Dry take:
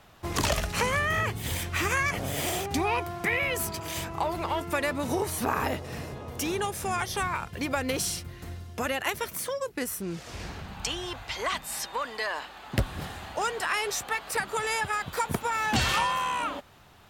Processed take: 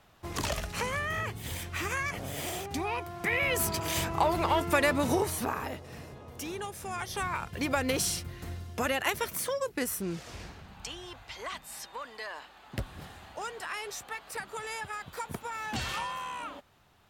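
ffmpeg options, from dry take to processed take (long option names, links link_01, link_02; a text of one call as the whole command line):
ffmpeg -i in.wav -af "volume=11dB,afade=type=in:start_time=3.11:duration=0.66:silence=0.354813,afade=type=out:start_time=4.98:duration=0.63:silence=0.281838,afade=type=in:start_time=6.89:duration=0.79:silence=0.398107,afade=type=out:start_time=10.06:duration=0.49:silence=0.354813" out.wav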